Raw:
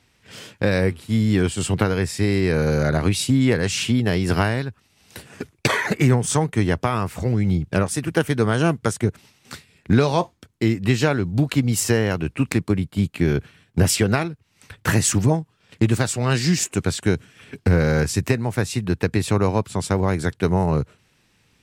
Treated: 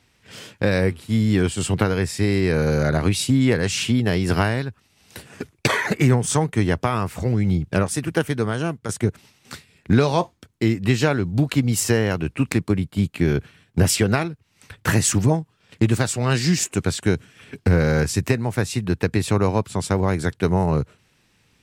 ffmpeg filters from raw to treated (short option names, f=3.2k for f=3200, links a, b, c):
-filter_complex "[0:a]asplit=2[a][b];[a]atrim=end=8.89,asetpts=PTS-STARTPTS,afade=t=out:st=8.01:d=0.88:silence=0.334965[c];[b]atrim=start=8.89,asetpts=PTS-STARTPTS,afade=t=in:d=0.004:c=hsin:silence=0.334965[d];[c][d]concat=n=2:v=0:a=1"